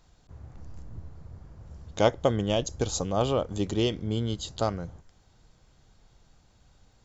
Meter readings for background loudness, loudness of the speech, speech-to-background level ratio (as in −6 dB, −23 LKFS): −47.5 LKFS, −28.0 LKFS, 19.5 dB